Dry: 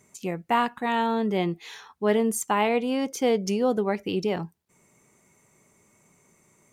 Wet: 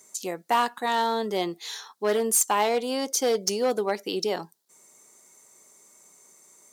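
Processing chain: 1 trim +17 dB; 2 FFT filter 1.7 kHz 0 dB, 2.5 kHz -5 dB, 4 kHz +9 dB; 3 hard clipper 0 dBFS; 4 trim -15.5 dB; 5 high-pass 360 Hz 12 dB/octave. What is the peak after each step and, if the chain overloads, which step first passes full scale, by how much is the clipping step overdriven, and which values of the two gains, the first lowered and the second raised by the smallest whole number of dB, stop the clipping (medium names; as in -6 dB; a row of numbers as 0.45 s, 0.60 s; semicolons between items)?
+5.5 dBFS, +9.0 dBFS, 0.0 dBFS, -15.5 dBFS, -10.5 dBFS; step 1, 9.0 dB; step 1 +8 dB, step 4 -6.5 dB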